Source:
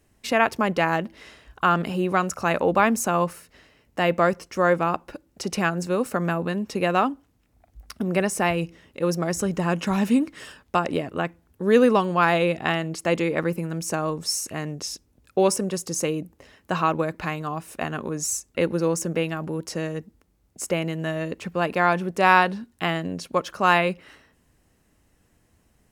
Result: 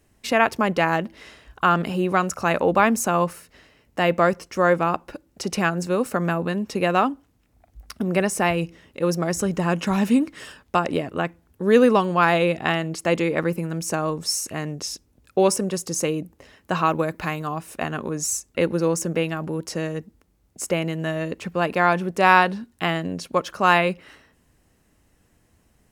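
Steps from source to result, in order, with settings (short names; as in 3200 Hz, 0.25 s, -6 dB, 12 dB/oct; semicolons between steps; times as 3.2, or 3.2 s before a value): 16.85–17.54 high shelf 12000 Hz +10.5 dB; gain +1.5 dB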